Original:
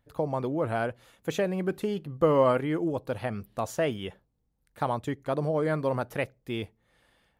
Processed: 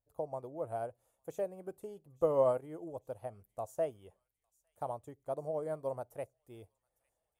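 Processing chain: FFT filter 100 Hz 0 dB, 210 Hz -9 dB, 670 Hz +5 dB, 1.7 kHz -12 dB, 4.1 kHz -12 dB, 8.1 kHz +6 dB; on a send: feedback echo behind a high-pass 854 ms, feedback 52%, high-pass 2.5 kHz, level -18.5 dB; on the sum: upward expansion 1.5:1, over -38 dBFS; trim -7 dB

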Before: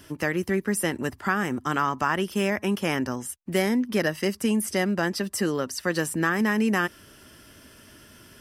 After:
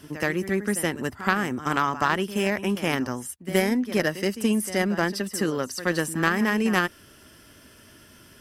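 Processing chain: reverse echo 74 ms -12 dB; Chebyshev shaper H 3 -16 dB, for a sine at -9 dBFS; trim +4.5 dB

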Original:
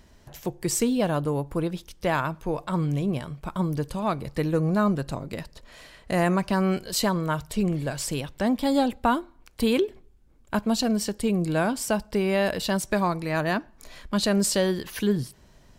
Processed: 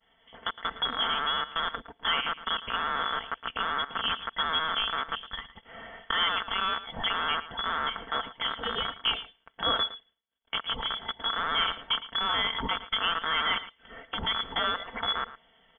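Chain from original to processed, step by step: rattle on loud lows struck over -32 dBFS, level -19 dBFS; recorder AGC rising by 5.5 dB/s; in parallel at -9.5 dB: companded quantiser 4-bit; on the sum: steep high-pass 330 Hz 72 dB/octave; tilt EQ +2.5 dB/octave; comb 4.5 ms, depth 52%; expander -50 dBFS; frequency inversion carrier 3.8 kHz; peaking EQ 2.5 kHz -14 dB 0.26 oct; on a send: delay 112 ms -15 dB; on the sum: trim -4.5 dB

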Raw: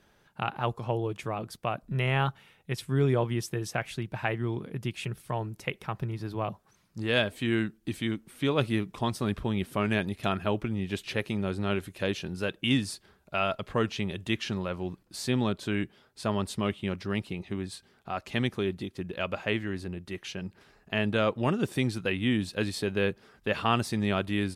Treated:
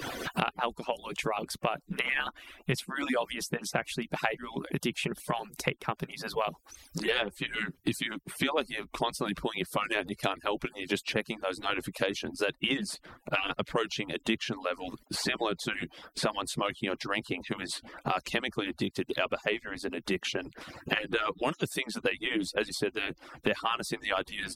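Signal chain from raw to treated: harmonic-percussive separation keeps percussive; three bands compressed up and down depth 100%; trim +2 dB

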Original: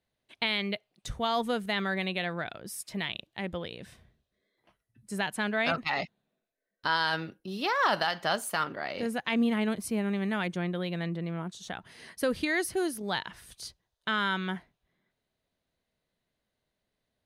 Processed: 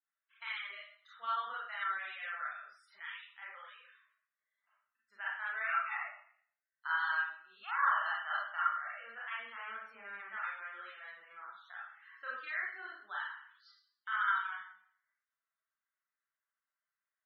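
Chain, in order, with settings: ladder band-pass 1.5 kHz, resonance 60%; Schroeder reverb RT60 0.59 s, combs from 28 ms, DRR -6.5 dB; loudest bins only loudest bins 64; trim -4 dB

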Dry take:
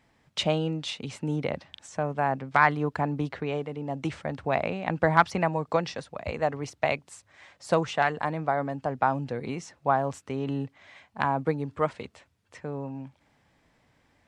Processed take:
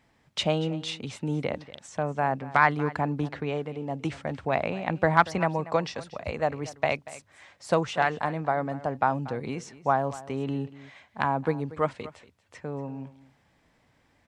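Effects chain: delay 236 ms -17.5 dB

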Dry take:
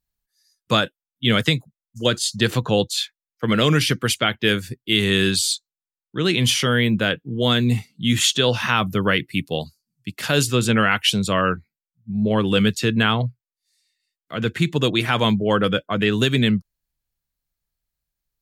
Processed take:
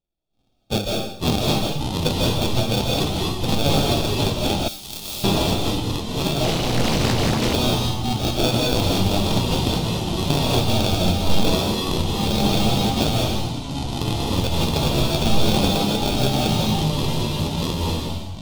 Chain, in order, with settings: sample-rate reducer 1 kHz, jitter 0%; algorithmic reverb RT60 0.7 s, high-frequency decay 1×, pre-delay 110 ms, DRR -1.5 dB; ever faster or slower copies 261 ms, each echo -5 st, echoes 3; FFT filter 120 Hz 0 dB, 520 Hz -4 dB, 850 Hz +3 dB, 1.7 kHz -14 dB, 3.4 kHz +9 dB, 7.3 kHz -1 dB; flange 0.3 Hz, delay 5.2 ms, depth 9.3 ms, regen +73%; 4.68–5.24 s: pre-emphasis filter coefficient 0.9; 6.44–7.54 s: loudspeaker Doppler distortion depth 0.95 ms

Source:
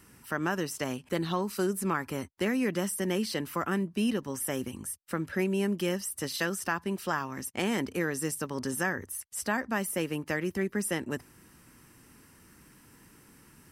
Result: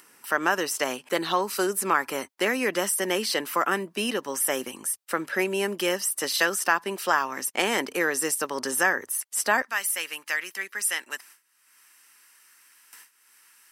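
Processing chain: high-pass 480 Hz 12 dB/octave, from 9.62 s 1.5 kHz; gate with hold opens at -48 dBFS; upward compressor, threshold -51 dBFS; trim +9 dB

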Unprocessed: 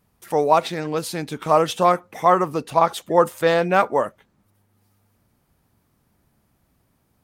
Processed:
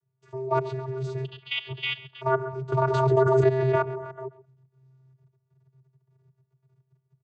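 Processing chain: chunks repeated in reverse 171 ms, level -7 dB; 1.24–2.21 s: frequency inversion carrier 3.5 kHz; level held to a coarse grid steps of 16 dB; bass shelf 190 Hz +4.5 dB; comb 2.4 ms, depth 32%; delay 134 ms -18 dB; vocoder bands 16, square 131 Hz; 2.72–3.83 s: swell ahead of each attack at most 21 dB/s; trim -4.5 dB

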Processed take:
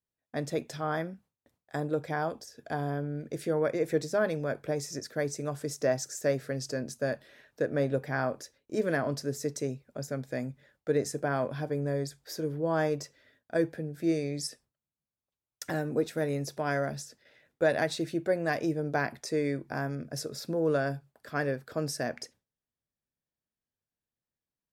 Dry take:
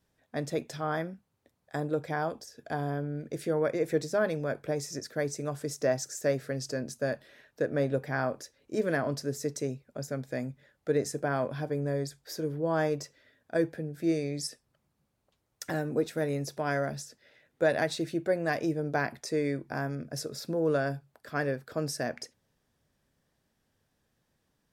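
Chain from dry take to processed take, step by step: gate with hold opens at -53 dBFS

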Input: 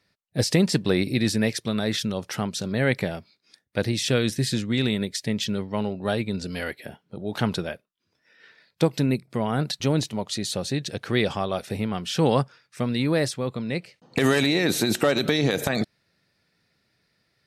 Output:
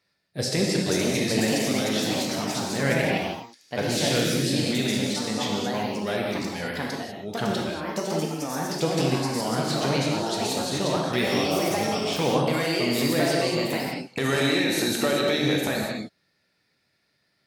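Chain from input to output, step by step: bass shelf 190 Hz -7 dB; gated-style reverb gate 260 ms flat, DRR -1.5 dB; ever faster or slower copies 554 ms, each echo +3 st, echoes 2; trim -4 dB

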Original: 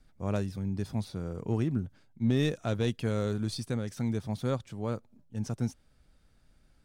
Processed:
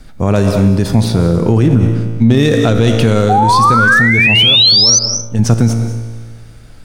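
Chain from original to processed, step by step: 4.40–5.39 s: compression, threshold -39 dBFS, peak gain reduction 13 dB; feedback comb 57 Hz, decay 1.7 s, harmonics all, mix 70%; 3.29–4.99 s: painted sound rise 730–6200 Hz -37 dBFS; reverberation RT60 0.45 s, pre-delay 154 ms, DRR 12.5 dB; loudness maximiser +34.5 dB; trim -1 dB

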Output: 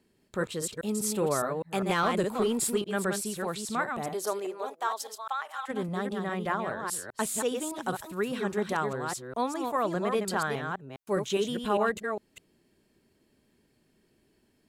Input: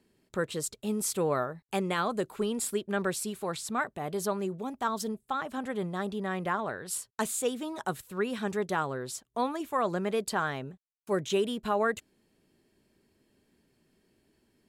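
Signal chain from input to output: chunks repeated in reverse 203 ms, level -5 dB; 1.89–2.82 s: waveshaping leveller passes 1; 4.13–5.68 s: high-pass 270 Hz -> 930 Hz 24 dB/octave

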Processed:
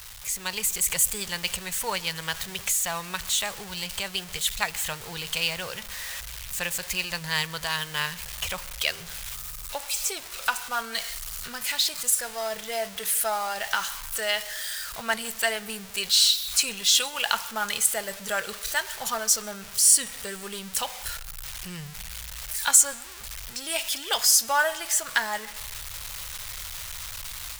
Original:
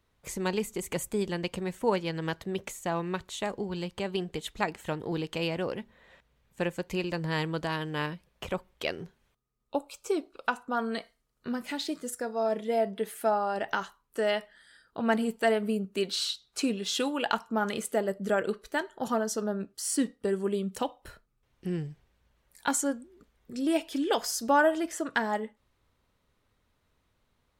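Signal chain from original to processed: jump at every zero crossing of -38 dBFS; treble shelf 5.5 kHz +6 dB; level rider gain up to 7 dB; amplifier tone stack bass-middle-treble 10-0-10; on a send: reverberation RT60 1.4 s, pre-delay 124 ms, DRR 21 dB; on the sum: trim +3 dB

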